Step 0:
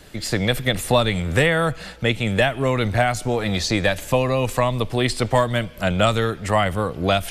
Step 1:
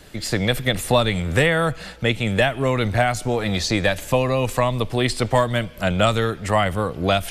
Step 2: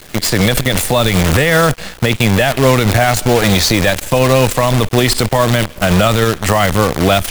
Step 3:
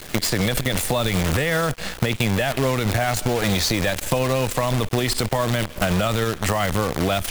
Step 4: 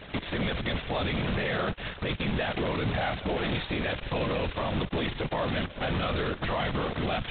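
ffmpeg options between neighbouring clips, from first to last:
-af anull
-af "acrusher=bits=5:dc=4:mix=0:aa=0.000001,alimiter=level_in=4.22:limit=0.891:release=50:level=0:latency=1,volume=0.891"
-af "acompressor=threshold=0.126:ratio=6"
-af "afftfilt=real='hypot(re,im)*cos(2*PI*random(0))':imag='hypot(re,im)*sin(2*PI*random(1))':win_size=512:overlap=0.75,alimiter=limit=0.0944:level=0:latency=1:release=13" -ar 8000 -c:a adpcm_g726 -b:a 16k

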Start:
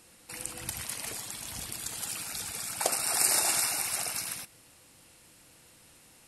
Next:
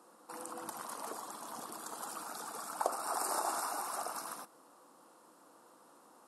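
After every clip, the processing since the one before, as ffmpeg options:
-af "highpass=f=240:w=0.5412,highpass=f=240:w=1.3066,highshelf=f=1600:t=q:w=3:g=-11.5,acompressor=threshold=0.0112:ratio=1.5,volume=1.12"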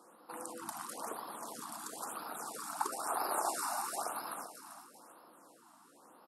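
-af "aecho=1:1:391|782|1173|1564:0.299|0.116|0.0454|0.0177,afftfilt=real='re*(1-between(b*sr/1024,420*pow(7700/420,0.5+0.5*sin(2*PI*1*pts/sr))/1.41,420*pow(7700/420,0.5+0.5*sin(2*PI*1*pts/sr))*1.41))':imag='im*(1-between(b*sr/1024,420*pow(7700/420,0.5+0.5*sin(2*PI*1*pts/sr))/1.41,420*pow(7700/420,0.5+0.5*sin(2*PI*1*pts/sr))*1.41))':win_size=1024:overlap=0.75,volume=1.12"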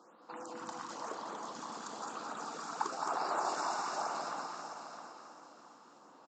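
-filter_complex "[0:a]asplit=2[s0][s1];[s1]aecho=0:1:660|1320|1980:0.335|0.0871|0.0226[s2];[s0][s2]amix=inputs=2:normalize=0,aresample=16000,aresample=44100,asplit=2[s3][s4];[s4]aecho=0:1:215.7|277:0.562|0.282[s5];[s3][s5]amix=inputs=2:normalize=0"

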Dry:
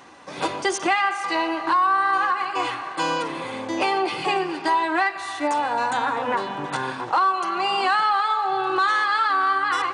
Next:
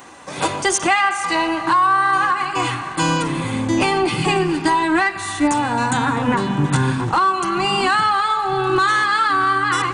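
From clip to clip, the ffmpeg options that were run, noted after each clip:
-af "asubboost=boost=12:cutoff=170,acontrast=38,aexciter=amount=3.5:drive=1.4:freq=6800"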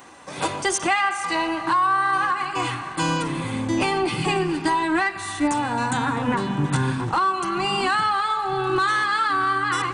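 -af "bandreject=f=6800:w=25,volume=0.596"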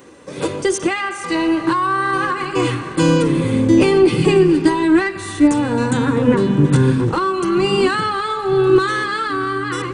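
-af "lowshelf=f=600:t=q:w=3:g=6.5,dynaudnorm=f=410:g=7:m=3.76,volume=0.891"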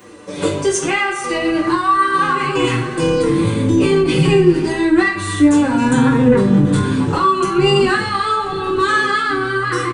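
-filter_complex "[0:a]acrossover=split=150[s0][s1];[s1]alimiter=limit=0.251:level=0:latency=1:release=20[s2];[s0][s2]amix=inputs=2:normalize=0,aecho=1:1:20|42|66.2|92.82|122.1:0.631|0.398|0.251|0.158|0.1,asplit=2[s3][s4];[s4]adelay=6.2,afreqshift=-0.61[s5];[s3][s5]amix=inputs=2:normalize=1,volume=1.78"

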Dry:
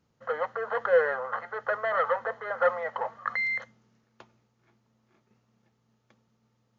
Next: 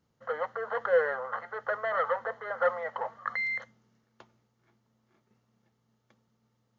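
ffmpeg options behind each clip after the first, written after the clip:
-af "bandreject=f=2500:w=15,volume=0.75"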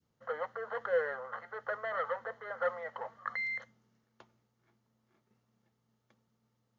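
-af "adynamicequalizer=threshold=0.00794:dfrequency=860:dqfactor=0.86:tfrequency=860:tqfactor=0.86:attack=5:release=100:ratio=0.375:range=2.5:mode=cutabove:tftype=bell,volume=0.631"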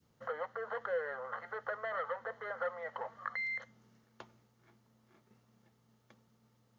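-af "acompressor=threshold=0.00316:ratio=2,volume=2.24"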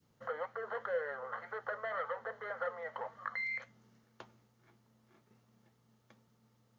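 -af "flanger=delay=6.2:depth=4.6:regen=-75:speed=1.9:shape=triangular,volume=1.58"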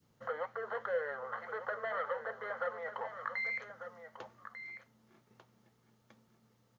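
-af "aecho=1:1:1195:0.299,volume=1.12"

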